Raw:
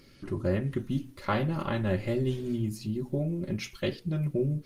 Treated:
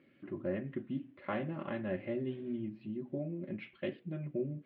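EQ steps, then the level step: distance through air 460 m; cabinet simulation 260–3300 Hz, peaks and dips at 440 Hz -9 dB, 900 Hz -9 dB, 1.3 kHz -7 dB; -1.5 dB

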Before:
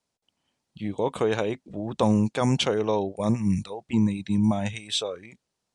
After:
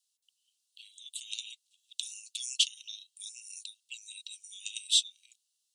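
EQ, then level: rippled Chebyshev high-pass 2.7 kHz, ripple 3 dB; treble shelf 4.5 kHz +8.5 dB; 0.0 dB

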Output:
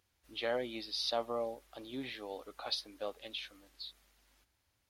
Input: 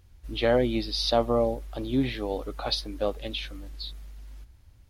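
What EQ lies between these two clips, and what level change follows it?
high-pass 760 Hz 6 dB/octave; -7.5 dB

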